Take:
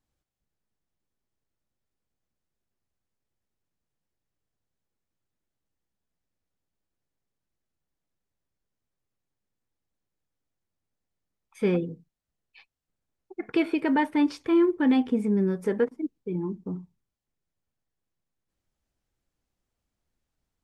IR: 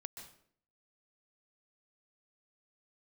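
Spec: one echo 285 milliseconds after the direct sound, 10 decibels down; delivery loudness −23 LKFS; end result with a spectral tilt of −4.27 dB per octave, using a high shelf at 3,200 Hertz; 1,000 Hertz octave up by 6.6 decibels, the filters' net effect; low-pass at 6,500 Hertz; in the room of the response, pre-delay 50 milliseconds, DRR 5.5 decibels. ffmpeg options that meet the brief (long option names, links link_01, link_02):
-filter_complex "[0:a]lowpass=6500,equalizer=frequency=1000:width_type=o:gain=8,highshelf=frequency=3200:gain=-6.5,aecho=1:1:285:0.316,asplit=2[link_01][link_02];[1:a]atrim=start_sample=2205,adelay=50[link_03];[link_02][link_03]afir=irnorm=-1:irlink=0,volume=-1.5dB[link_04];[link_01][link_04]amix=inputs=2:normalize=0,volume=0.5dB"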